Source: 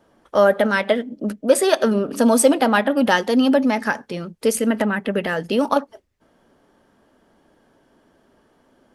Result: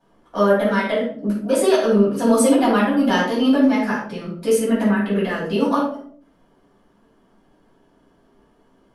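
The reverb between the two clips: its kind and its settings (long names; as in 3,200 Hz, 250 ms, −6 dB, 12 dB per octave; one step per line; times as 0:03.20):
rectangular room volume 560 cubic metres, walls furnished, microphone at 8 metres
level −12 dB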